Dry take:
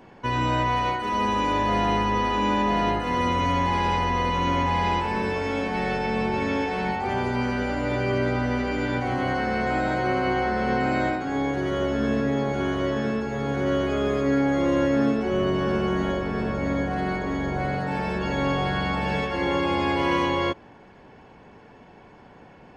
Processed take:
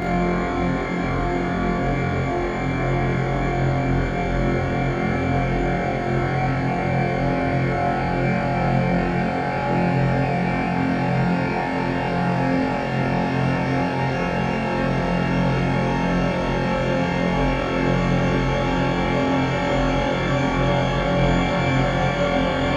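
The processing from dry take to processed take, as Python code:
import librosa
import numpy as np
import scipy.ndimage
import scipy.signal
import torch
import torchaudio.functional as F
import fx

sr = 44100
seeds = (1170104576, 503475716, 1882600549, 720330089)

p1 = fx.peak_eq(x, sr, hz=970.0, db=-6.5, octaves=0.23)
p2 = fx.wow_flutter(p1, sr, seeds[0], rate_hz=2.1, depth_cents=92.0)
p3 = fx.paulstretch(p2, sr, seeds[1], factor=18.0, window_s=1.0, from_s=17.27)
y = p3 + fx.room_flutter(p3, sr, wall_m=3.9, rt60_s=0.69, dry=0)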